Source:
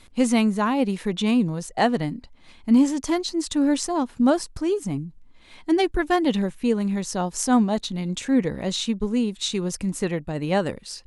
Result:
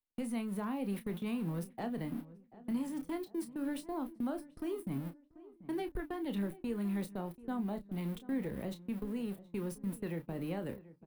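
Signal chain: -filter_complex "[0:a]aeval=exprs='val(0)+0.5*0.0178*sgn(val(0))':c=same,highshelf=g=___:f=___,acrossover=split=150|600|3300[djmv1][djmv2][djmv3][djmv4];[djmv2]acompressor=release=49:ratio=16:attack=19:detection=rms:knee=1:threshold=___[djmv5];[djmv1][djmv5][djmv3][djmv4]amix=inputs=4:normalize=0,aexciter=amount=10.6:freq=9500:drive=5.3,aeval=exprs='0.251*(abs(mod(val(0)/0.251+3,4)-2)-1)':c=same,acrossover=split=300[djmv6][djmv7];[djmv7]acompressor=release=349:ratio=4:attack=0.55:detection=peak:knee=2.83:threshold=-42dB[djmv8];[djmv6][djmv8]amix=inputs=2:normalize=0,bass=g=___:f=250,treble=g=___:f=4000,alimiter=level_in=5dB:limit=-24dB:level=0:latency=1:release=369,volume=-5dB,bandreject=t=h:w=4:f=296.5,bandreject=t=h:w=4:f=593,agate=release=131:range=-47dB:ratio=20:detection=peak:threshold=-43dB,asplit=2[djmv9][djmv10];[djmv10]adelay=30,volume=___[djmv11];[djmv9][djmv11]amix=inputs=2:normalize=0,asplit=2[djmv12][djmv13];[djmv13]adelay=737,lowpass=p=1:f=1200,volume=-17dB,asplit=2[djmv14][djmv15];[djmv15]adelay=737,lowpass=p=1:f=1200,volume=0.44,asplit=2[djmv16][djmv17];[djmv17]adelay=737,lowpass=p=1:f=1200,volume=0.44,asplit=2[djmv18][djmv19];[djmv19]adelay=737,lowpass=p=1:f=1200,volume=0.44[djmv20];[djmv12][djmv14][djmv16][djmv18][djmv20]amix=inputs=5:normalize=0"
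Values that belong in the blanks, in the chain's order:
-10.5, 5700, -29dB, -13, -4, -9.5dB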